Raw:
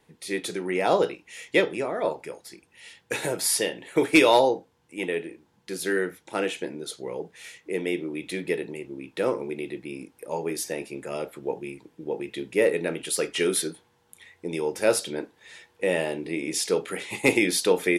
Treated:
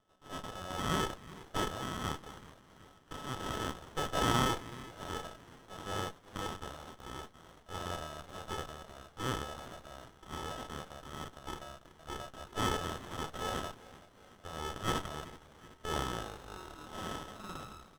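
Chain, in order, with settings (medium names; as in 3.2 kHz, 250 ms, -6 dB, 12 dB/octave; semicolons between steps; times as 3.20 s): tape stop on the ending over 2.42 s; sample-and-hold 34×; ladder band-pass 3.8 kHz, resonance 35%; transient shaper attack -5 dB, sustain +6 dB; on a send: frequency-shifting echo 378 ms, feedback 57%, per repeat -62 Hz, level -15 dB; on the sum: sliding maximum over 17 samples; trim +8.5 dB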